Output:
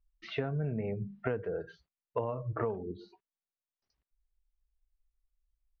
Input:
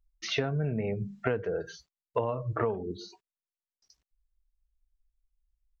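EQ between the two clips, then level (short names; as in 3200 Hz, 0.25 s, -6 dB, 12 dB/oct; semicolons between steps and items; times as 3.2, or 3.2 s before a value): air absorption 360 m; -3.0 dB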